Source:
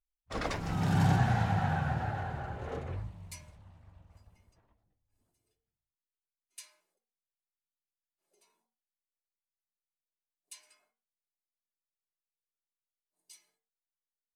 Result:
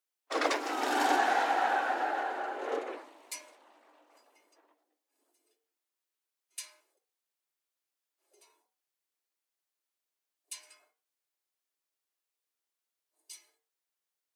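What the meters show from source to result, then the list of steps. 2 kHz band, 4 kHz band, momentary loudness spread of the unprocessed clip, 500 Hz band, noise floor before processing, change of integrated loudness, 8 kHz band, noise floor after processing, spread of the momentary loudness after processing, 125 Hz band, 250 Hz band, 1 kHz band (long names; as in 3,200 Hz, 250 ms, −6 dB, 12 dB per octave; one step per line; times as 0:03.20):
+6.5 dB, +6.5 dB, 22 LU, +6.5 dB, below −85 dBFS, +1.0 dB, +6.5 dB, below −85 dBFS, 21 LU, below −40 dB, −5.0 dB, +6.5 dB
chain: Butterworth high-pass 280 Hz 72 dB per octave
level +6.5 dB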